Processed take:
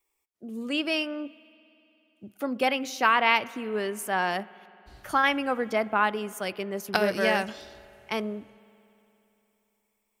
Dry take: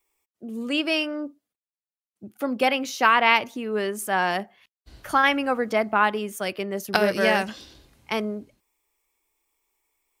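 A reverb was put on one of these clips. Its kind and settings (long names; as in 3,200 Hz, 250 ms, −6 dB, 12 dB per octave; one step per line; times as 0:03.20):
spring reverb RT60 3.2 s, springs 58 ms, chirp 75 ms, DRR 20 dB
level −3.5 dB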